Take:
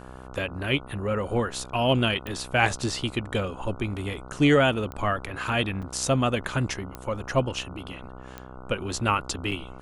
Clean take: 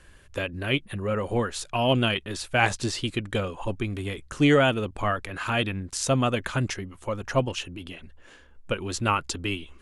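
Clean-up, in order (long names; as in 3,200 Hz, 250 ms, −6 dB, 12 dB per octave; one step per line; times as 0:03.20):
click removal
hum removal 63.8 Hz, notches 23
repair the gap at 0:05.82/0:09.51, 6.2 ms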